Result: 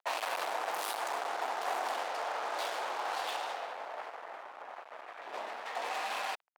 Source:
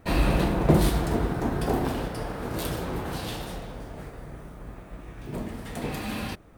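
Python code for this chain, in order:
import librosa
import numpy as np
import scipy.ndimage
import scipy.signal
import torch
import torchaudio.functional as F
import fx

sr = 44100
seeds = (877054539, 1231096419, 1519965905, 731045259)

y = fx.env_lowpass(x, sr, base_hz=2200.0, full_db=-17.5)
y = fx.fuzz(y, sr, gain_db=35.0, gate_db=-44.0)
y = fx.ladder_highpass(y, sr, hz=620.0, resonance_pct=40)
y = F.gain(torch.from_numpy(y), -9.0).numpy()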